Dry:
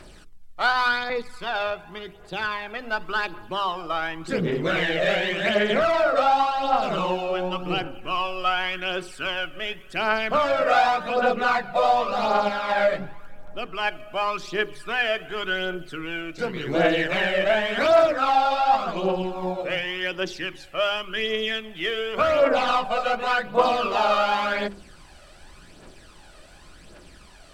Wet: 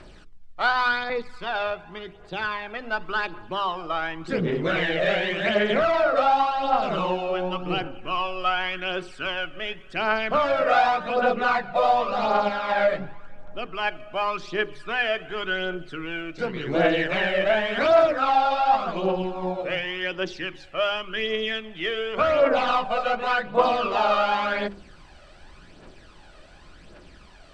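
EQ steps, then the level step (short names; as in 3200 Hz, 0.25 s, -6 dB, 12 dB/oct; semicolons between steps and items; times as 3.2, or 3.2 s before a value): air absorption 88 m; 0.0 dB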